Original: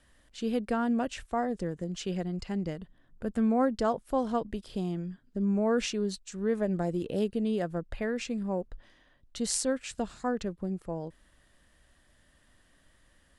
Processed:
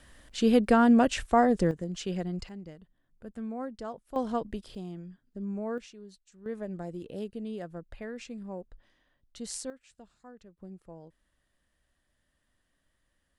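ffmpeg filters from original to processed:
-af "asetnsamples=n=441:p=0,asendcmd='1.71 volume volume 0dB;2.49 volume volume -11dB;4.16 volume volume -1dB;4.75 volume volume -7.5dB;5.78 volume volume -17.5dB;6.46 volume volume -8dB;9.7 volume volume -20dB;10.57 volume volume -12dB',volume=8dB"

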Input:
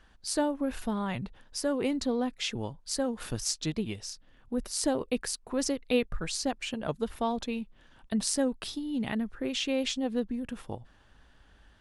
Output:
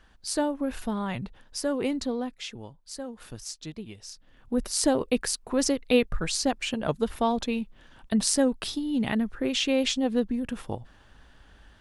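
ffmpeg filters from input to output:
-af "volume=13.5dB,afade=t=out:st=1.9:d=0.67:silence=0.375837,afade=t=in:st=3.96:d=0.59:silence=0.251189"

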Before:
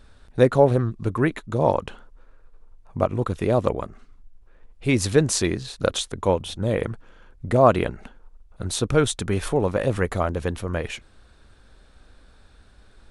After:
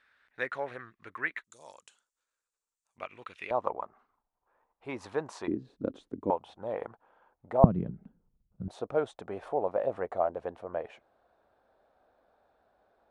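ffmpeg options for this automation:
-af "asetnsamples=n=441:p=0,asendcmd='1.44 bandpass f 7500;2.98 bandpass f 2400;3.51 bandpass f 910;5.48 bandpass f 280;6.3 bandpass f 820;7.64 bandpass f 170;8.68 bandpass f 690',bandpass=f=1.9k:t=q:w=3.1:csg=0"

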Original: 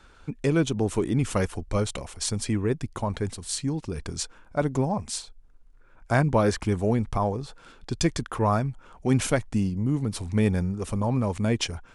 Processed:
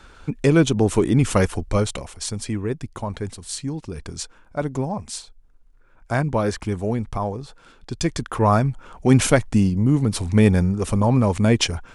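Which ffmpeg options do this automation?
-af "volume=14.5dB,afade=t=out:st=1.56:d=0.67:silence=0.446684,afade=t=in:st=7.99:d=0.69:silence=0.421697"

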